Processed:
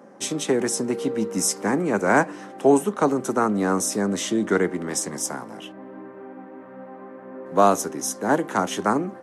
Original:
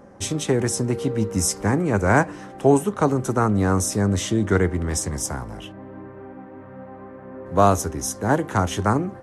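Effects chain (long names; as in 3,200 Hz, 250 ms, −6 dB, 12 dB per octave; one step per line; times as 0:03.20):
high-pass filter 190 Hz 24 dB per octave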